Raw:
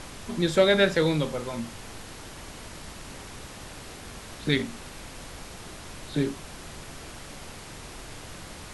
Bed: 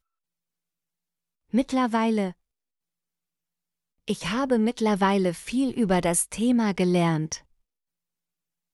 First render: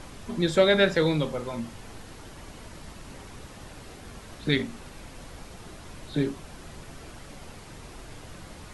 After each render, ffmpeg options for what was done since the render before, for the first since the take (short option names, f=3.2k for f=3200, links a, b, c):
-af "afftdn=nr=6:nf=-43"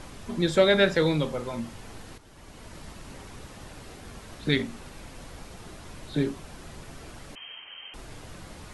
-filter_complex "[0:a]asettb=1/sr,asplit=3[a][b][c];[a]atrim=end=7.354[d];[b]atrim=start=7.35:end=7.94,asetpts=PTS-STARTPTS,afade=t=in:d=0.004:c=qsin,afade=t=out:st=0.586:d=0.004:c=qsin,lowpass=f=2.7k:t=q:w=0.5098,lowpass=f=2.7k:t=q:w=0.6013,lowpass=f=2.7k:t=q:w=0.9,lowpass=f=2.7k:t=q:w=2.563,afreqshift=-3200[e];[c]atrim=start=7.936[f];[d][e]acrossfade=d=0.004:c1=hsin:c2=qsin[g];[g][f]acrossfade=d=0.004:c1=qsin:c2=hsin,asplit=2[h][i];[h]atrim=end=2.18,asetpts=PTS-STARTPTS,afade=t=out:st=2.176:d=0.004:c=hsin:silence=0.251189[j];[i]atrim=start=2.18,asetpts=PTS-STARTPTS,afade=t=in:d=0.59:silence=0.251189[k];[j][k]concat=n=2:v=0:a=1"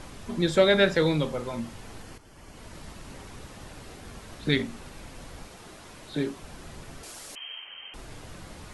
-filter_complex "[0:a]asettb=1/sr,asplit=3[a][b][c];[a]atrim=end=2.024[d];[b]atrim=start=2.02:end=2.57,asetpts=PTS-STARTPTS,afade=t=in:d=0.004:c=qsin,afade=t=out:st=0.546:d=0.004:c=qsin,bandreject=f=3.8k:w=8.2[e];[c]atrim=start=2.566[f];[d][e]acrossfade=d=0.004:c1=hsin:c2=qsin[g];[g][f]acrossfade=d=0.004:c1=qsin:c2=hsin,asettb=1/sr,asplit=3[h][i][j];[h]atrim=end=5.474[k];[i]atrim=start=5.47:end=6.42,asetpts=PTS-STARTPTS,afade=t=in:d=0.004:c=qsin,afade=t=out:st=0.946:d=0.004:c=qsin,lowshelf=f=160:g=-10[l];[j]atrim=start=6.416[m];[k][l]acrossfade=d=0.004:c1=hsin:c2=qsin[n];[n][m]acrossfade=d=0.004:c1=qsin:c2=hsin,asettb=1/sr,asplit=3[o][p][q];[o]atrim=end=7.034[r];[p]atrim=start=7.03:end=7.67,asetpts=PTS-STARTPTS,afade=t=in:d=0.004:c=qsin,afade=t=out:st=0.636:d=0.004:c=qsin,bass=f=250:g=-13,treble=f=4k:g=12[s];[q]atrim=start=7.666[t];[r][s]acrossfade=d=0.004:c1=hsin:c2=qsin[u];[u][t]acrossfade=d=0.004:c1=qsin:c2=hsin"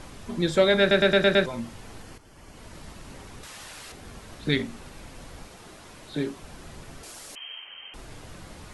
-filter_complex "[0:a]asettb=1/sr,asplit=3[a][b][c];[a]atrim=end=3.434[d];[b]atrim=start=3.43:end=3.92,asetpts=PTS-STARTPTS,afade=t=in:d=0.004:c=qsin,afade=t=out:st=0.486:d=0.004:c=qsin,tiltshelf=f=710:g=-8.5[e];[c]atrim=start=3.916[f];[d][e]acrossfade=d=0.004:c1=hsin:c2=qsin[g];[g][f]acrossfade=d=0.004:c1=qsin:c2=hsin,asplit=7[h][i][j][k][l][m][n];[h]atrim=end=0.912[o];[i]atrim=start=0.798:end=0.912[p];[j]atrim=start=0.798:end=0.912[q];[k]atrim=start=0.798:end=0.912[r];[l]atrim=start=0.798:end=0.912[s];[m]atrim=start=0.798:end=0.912[t];[n]atrim=start=1.458[u];[o][p]acrossfade=d=0.004:c1=hsin:c2=hsin[v];[v][q]acrossfade=d=0.004:c1=hsin:c2=hsin[w];[w][r]acrossfade=d=0.004:c1=hsin:c2=hsin[x];[x][s]acrossfade=d=0.004:c1=hsin:c2=hsin[y];[y][t]acrossfade=d=0.004:c1=hsin:c2=hsin[z];[z][u]acrossfade=d=0.004:c1=hsin:c2=hsin"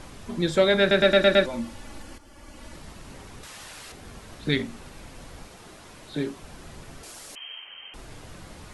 -filter_complex "[0:a]asettb=1/sr,asplit=3[a][b][c];[a]atrim=end=1.034[d];[b]atrim=start=1.03:end=2.76,asetpts=PTS-STARTPTS,afade=t=in:d=0.004:c=qsin,afade=t=out:st=1.726:d=0.004:c=qsin,aecho=1:1:3.5:0.65,atrim=end_sample=76293[e];[c]atrim=start=2.756[f];[d][e]acrossfade=d=0.004:c1=hsin:c2=qsin[g];[g][f]acrossfade=d=0.004:c1=qsin:c2=hsin"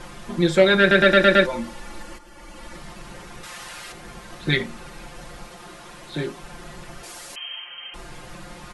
-af "equalizer=f=1.3k:w=0.55:g=4.5,aecho=1:1:5.7:0.91"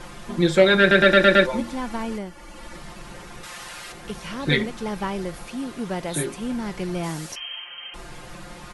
-filter_complex "[1:a]volume=-6.5dB[a];[0:a][a]amix=inputs=2:normalize=0"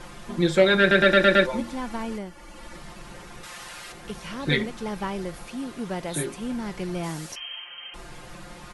-af "volume=-2.5dB"